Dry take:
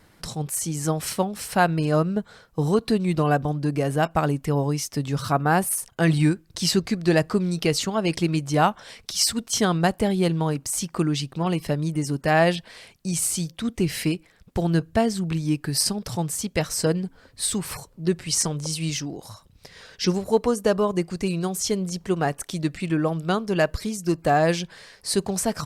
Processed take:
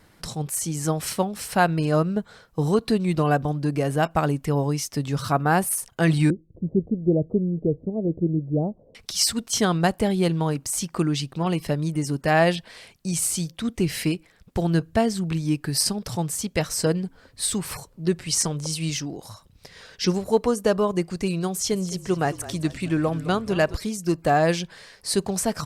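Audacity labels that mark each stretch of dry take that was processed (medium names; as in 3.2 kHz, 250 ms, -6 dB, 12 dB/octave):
6.300000	8.950000	steep low-pass 560 Hz
21.500000	23.770000	frequency-shifting echo 212 ms, feedback 57%, per repeat -36 Hz, level -15.5 dB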